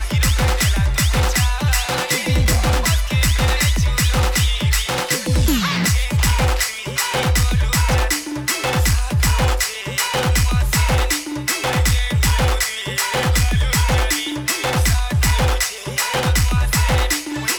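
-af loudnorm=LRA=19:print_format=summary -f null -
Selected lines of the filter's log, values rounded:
Input Integrated:    -18.0 LUFS
Input True Peak:      -8.9 dBTP
Input LRA:             0.8 LU
Input Threshold:     -28.0 LUFS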